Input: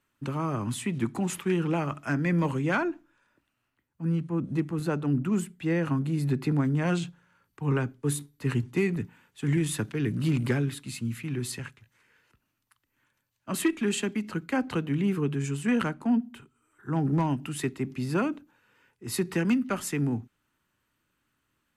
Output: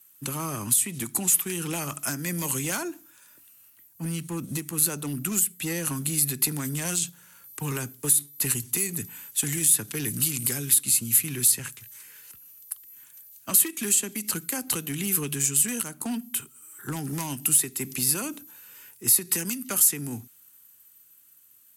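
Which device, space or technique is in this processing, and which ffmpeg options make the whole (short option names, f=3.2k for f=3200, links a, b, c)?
FM broadcast chain: -filter_complex "[0:a]highpass=59,dynaudnorm=f=220:g=17:m=5.5dB,acrossover=split=1400|4500[a][b][c];[a]acompressor=threshold=-28dB:ratio=4[d];[b]acompressor=threshold=-42dB:ratio=4[e];[c]acompressor=threshold=-39dB:ratio=4[f];[d][e][f]amix=inputs=3:normalize=0,aemphasis=mode=production:type=75fm,alimiter=limit=-20.5dB:level=0:latency=1:release=311,asoftclip=type=hard:threshold=-24.5dB,lowpass=f=15k:w=0.5412,lowpass=f=15k:w=1.3066,aemphasis=mode=production:type=75fm"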